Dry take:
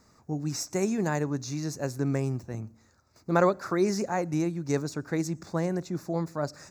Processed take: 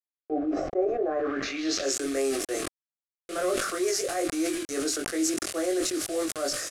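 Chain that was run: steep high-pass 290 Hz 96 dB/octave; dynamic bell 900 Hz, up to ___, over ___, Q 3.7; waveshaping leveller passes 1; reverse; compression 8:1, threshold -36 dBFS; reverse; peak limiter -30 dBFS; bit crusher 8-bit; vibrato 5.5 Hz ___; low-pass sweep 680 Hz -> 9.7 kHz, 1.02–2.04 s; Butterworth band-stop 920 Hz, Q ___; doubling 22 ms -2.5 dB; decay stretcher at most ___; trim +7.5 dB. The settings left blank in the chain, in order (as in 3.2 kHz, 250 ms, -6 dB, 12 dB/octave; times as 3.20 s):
+3 dB, -44 dBFS, 9.2 cents, 2.5, 39 dB/s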